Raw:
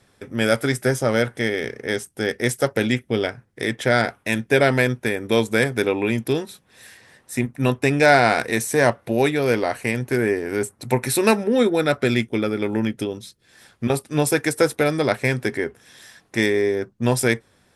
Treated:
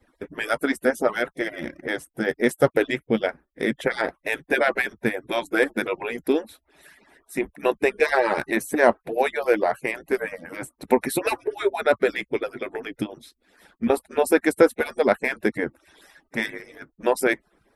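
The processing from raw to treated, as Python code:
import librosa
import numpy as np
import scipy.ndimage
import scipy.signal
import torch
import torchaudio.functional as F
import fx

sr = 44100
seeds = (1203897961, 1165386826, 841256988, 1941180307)

y = fx.hpss_only(x, sr, part='percussive')
y = fx.peak_eq(y, sr, hz=6500.0, db=-13.5, octaves=2.2)
y = F.gain(torch.from_numpy(y), 3.0).numpy()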